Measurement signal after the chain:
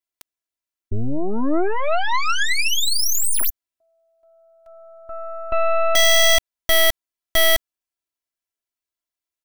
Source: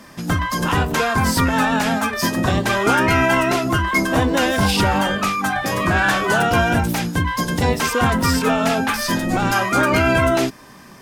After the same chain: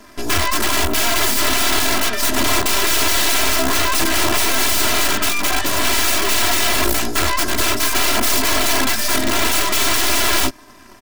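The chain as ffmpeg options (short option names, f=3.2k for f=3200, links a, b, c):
-af "aeval=exprs='(mod(5.96*val(0)+1,2)-1)/5.96':c=same,aeval=exprs='0.168*(cos(1*acos(clip(val(0)/0.168,-1,1)))-cos(1*PI/2))+0.0188*(cos(3*acos(clip(val(0)/0.168,-1,1)))-cos(3*PI/2))+0.0376*(cos(4*acos(clip(val(0)/0.168,-1,1)))-cos(4*PI/2))+0.00266*(cos(7*acos(clip(val(0)/0.168,-1,1)))-cos(7*PI/2))+0.0211*(cos(8*acos(clip(val(0)/0.168,-1,1)))-cos(8*PI/2))':c=same,aecho=1:1:3:0.93"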